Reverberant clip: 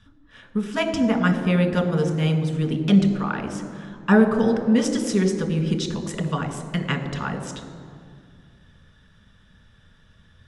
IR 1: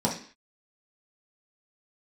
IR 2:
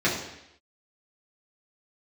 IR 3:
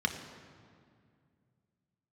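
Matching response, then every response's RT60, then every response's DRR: 3; 0.45, 0.80, 2.2 seconds; −4.0, −8.0, 4.5 decibels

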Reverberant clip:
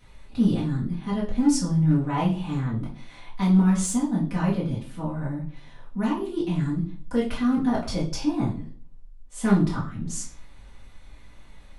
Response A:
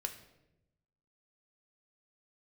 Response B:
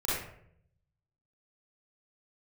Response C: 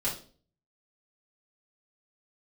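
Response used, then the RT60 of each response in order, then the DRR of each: C; 0.90, 0.70, 0.45 seconds; 5.0, −10.0, −8.0 decibels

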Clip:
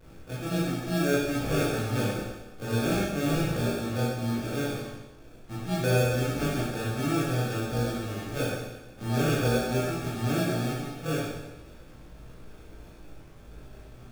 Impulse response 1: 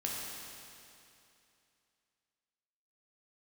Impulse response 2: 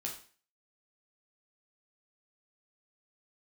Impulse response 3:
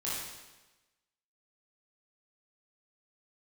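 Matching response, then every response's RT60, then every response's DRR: 3; 2.7, 0.40, 1.1 seconds; −4.0, −1.0, −8.5 decibels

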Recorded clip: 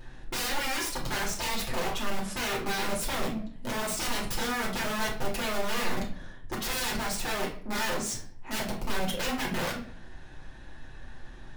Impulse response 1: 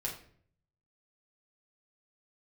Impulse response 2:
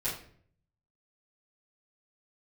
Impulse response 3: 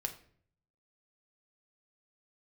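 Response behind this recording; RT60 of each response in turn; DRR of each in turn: 1; 0.55, 0.55, 0.55 seconds; −3.0, −12.0, 4.5 decibels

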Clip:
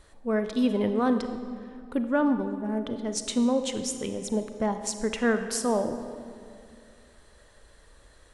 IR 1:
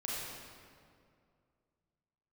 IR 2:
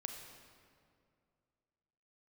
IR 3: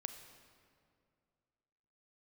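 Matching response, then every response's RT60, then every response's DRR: 3; 2.3, 2.3, 2.3 seconds; −6.0, 4.0, 8.0 decibels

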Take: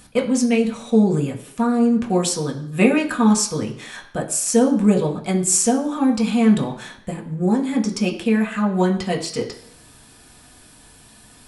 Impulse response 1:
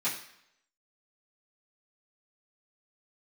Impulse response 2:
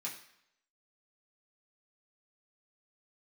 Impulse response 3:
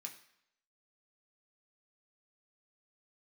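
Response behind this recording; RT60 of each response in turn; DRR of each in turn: 3; 0.75, 0.75, 0.75 seconds; −12.5, −6.0, 0.5 decibels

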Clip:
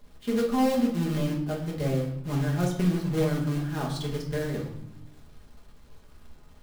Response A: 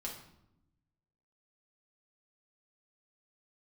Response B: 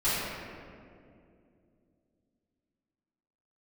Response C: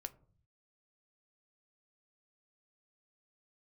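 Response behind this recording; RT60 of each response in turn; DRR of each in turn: A; 0.80, 2.5, 0.50 seconds; −3.0, −15.0, 9.5 decibels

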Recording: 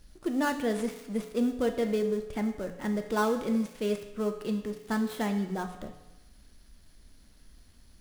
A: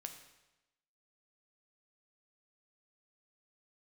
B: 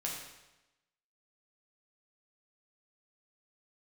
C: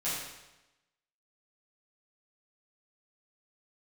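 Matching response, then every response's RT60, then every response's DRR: A; 1.0, 1.0, 1.0 seconds; 5.0, −3.0, −12.0 decibels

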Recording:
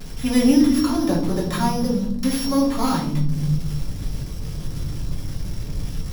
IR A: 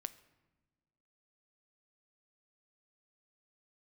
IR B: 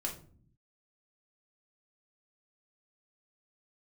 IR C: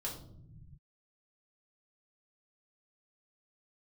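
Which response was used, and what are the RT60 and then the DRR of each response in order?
C; non-exponential decay, 0.50 s, non-exponential decay; 12.5, −1.0, −4.0 decibels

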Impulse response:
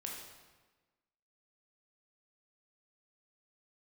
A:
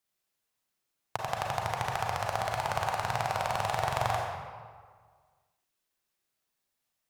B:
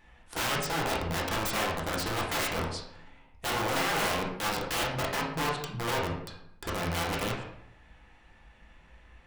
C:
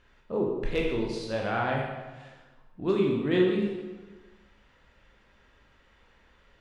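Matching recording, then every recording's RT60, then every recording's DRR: C; 1.7, 0.75, 1.3 seconds; −1.0, −3.5, −2.0 decibels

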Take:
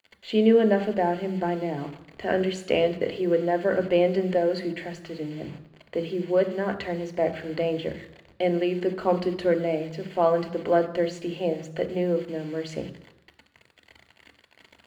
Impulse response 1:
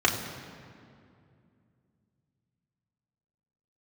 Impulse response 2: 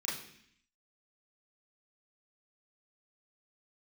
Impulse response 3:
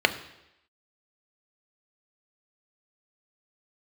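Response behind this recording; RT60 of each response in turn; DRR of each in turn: 3; 2.4, 0.65, 0.85 seconds; −2.5, −7.0, 8.0 decibels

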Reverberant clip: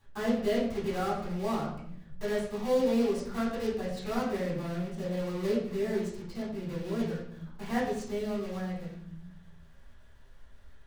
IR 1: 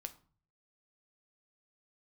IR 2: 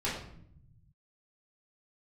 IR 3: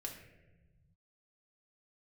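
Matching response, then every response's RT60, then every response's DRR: 2; 0.45, 0.65, 1.1 seconds; 8.0, −9.5, 0.0 decibels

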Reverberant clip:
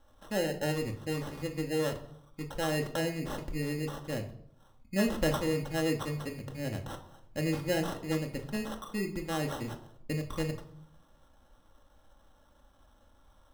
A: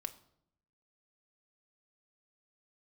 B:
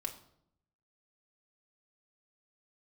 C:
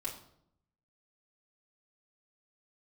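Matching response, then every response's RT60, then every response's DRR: B; 0.70, 0.70, 0.70 seconds; 7.5, 2.0, −5.0 decibels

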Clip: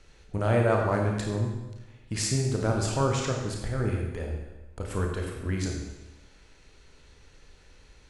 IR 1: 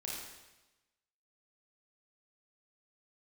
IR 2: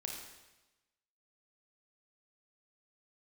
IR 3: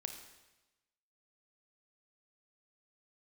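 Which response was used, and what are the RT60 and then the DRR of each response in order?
2; 1.1, 1.1, 1.1 seconds; −4.5, 0.0, 5.0 decibels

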